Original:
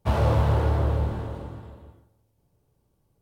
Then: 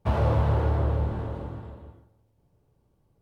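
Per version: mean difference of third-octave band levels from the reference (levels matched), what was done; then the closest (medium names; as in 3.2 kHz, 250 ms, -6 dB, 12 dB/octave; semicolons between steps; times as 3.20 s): 2.5 dB: in parallel at -2 dB: compression, threshold -32 dBFS, peak gain reduction 14.5 dB; on the sum: treble shelf 4.2 kHz -10 dB; trim -3 dB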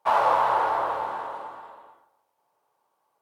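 8.5 dB: resonant high-pass 950 Hz, resonance Q 2.3; treble shelf 2.1 kHz -9.5 dB; trim +7 dB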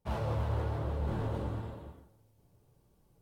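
5.0 dB: reverse; compression 8:1, threshold -32 dBFS, peak gain reduction 15 dB; reverse; flange 1 Hz, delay 3.9 ms, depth 6.9 ms, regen -45%; trim +6 dB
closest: first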